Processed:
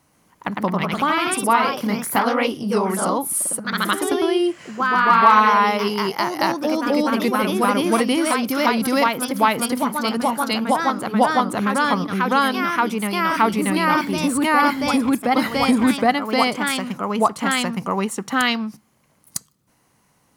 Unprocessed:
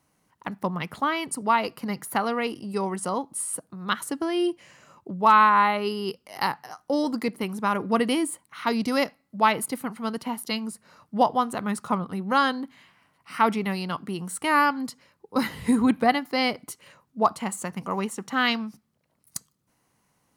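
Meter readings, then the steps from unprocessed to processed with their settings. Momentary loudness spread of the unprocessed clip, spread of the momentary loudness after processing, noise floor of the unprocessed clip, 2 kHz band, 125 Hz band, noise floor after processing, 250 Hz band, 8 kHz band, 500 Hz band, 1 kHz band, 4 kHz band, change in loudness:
15 LU, 6 LU, −71 dBFS, +7.0 dB, +6.5 dB, −62 dBFS, +7.0 dB, +8.0 dB, +7.0 dB, +6.0 dB, +7.0 dB, +6.0 dB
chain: delay with pitch and tempo change per echo 132 ms, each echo +1 semitone, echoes 3
in parallel at +3 dB: downward compressor, threshold −27 dBFS, peak gain reduction 16 dB

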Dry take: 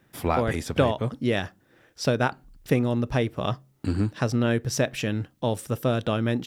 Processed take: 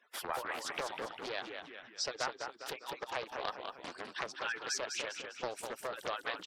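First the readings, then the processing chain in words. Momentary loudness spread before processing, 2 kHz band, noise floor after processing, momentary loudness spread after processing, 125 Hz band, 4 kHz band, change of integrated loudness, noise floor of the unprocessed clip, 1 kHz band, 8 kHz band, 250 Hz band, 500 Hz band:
6 LU, −7.0 dB, −57 dBFS, 8 LU, −35.0 dB, −5.0 dB, −13.5 dB, −64 dBFS, −8.5 dB, −5.0 dB, −26.5 dB, −15.0 dB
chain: harmonic-percussive split with one part muted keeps percussive
downward compressor 5 to 1, threshold −34 dBFS, peak gain reduction 15 dB
high-pass filter 810 Hz 12 dB per octave
high-shelf EQ 7,200 Hz −11 dB
gate on every frequency bin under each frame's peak −25 dB strong
echo with shifted repeats 201 ms, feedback 43%, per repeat −45 Hz, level −6 dB
dynamic equaliser 2,200 Hz, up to −4 dB, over −51 dBFS, Q 1
highs frequency-modulated by the lows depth 0.48 ms
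level +5.5 dB

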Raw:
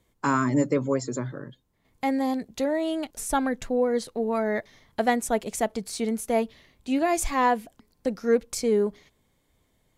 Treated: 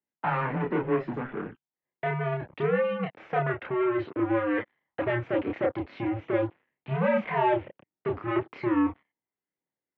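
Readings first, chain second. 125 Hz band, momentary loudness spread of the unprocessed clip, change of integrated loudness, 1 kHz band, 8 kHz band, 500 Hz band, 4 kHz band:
+3.5 dB, 9 LU, −2.5 dB, −3.0 dB, below −40 dB, −2.0 dB, −8.5 dB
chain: leveller curve on the samples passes 5
multi-voice chorus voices 2, 0.36 Hz, delay 30 ms, depth 1 ms
single-sideband voice off tune −120 Hz 310–2,700 Hz
level −8.5 dB

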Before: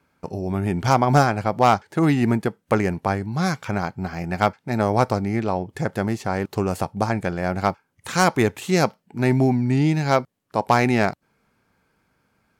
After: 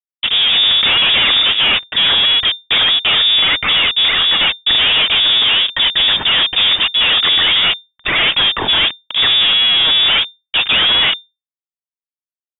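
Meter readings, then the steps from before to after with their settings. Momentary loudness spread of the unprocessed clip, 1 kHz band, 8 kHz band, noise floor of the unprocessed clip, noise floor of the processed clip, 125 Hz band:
8 LU, −2.0 dB, below −40 dB, −71 dBFS, below −85 dBFS, −13.5 dB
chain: phase shifter 1.5 Hz, delay 4.5 ms, feedback 60%
fuzz pedal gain 39 dB, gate −40 dBFS
power curve on the samples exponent 0.5
voice inversion scrambler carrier 3,600 Hz

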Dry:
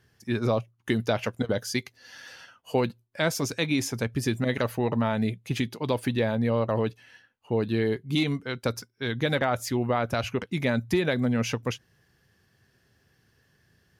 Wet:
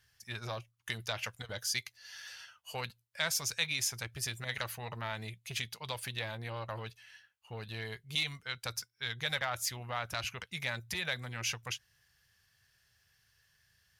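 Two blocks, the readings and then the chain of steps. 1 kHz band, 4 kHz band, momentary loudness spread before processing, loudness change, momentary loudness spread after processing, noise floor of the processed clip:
−9.5 dB, −1.0 dB, 7 LU, −9.5 dB, 12 LU, −74 dBFS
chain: guitar amp tone stack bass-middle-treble 10-0-10
saturating transformer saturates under 1,500 Hz
level +1.5 dB

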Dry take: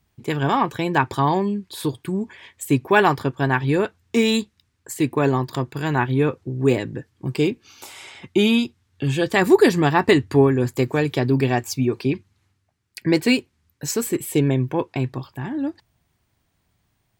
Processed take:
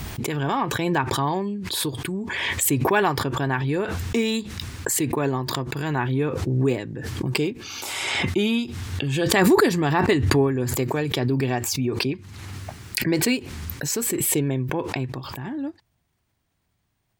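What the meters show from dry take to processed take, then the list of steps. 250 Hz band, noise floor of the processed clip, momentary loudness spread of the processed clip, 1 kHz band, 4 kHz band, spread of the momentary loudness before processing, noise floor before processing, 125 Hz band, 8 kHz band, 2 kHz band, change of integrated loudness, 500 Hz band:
−3.5 dB, −72 dBFS, 11 LU, −3.0 dB, +1.0 dB, 13 LU, −70 dBFS, −1.5 dB, +6.5 dB, −1.5 dB, −2.5 dB, −4.0 dB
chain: background raised ahead of every attack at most 25 dB per second
level −5 dB

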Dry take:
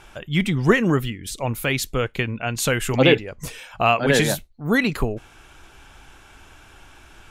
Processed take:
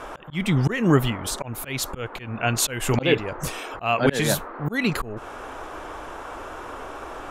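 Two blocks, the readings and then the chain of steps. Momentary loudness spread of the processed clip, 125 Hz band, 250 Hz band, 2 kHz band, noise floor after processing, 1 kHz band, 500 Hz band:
15 LU, −1.0 dB, −2.5 dB, −4.5 dB, −39 dBFS, −2.0 dB, −4.0 dB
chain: noise in a band 270–1,400 Hz −40 dBFS
volume swells 262 ms
level +3 dB

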